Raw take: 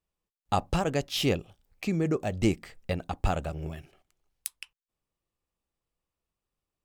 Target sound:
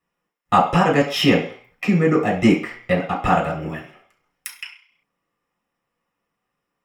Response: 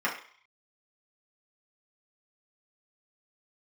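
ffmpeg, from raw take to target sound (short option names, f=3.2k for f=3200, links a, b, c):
-filter_complex "[1:a]atrim=start_sample=2205[a];[0:a][a]afir=irnorm=-1:irlink=0,volume=3.5dB"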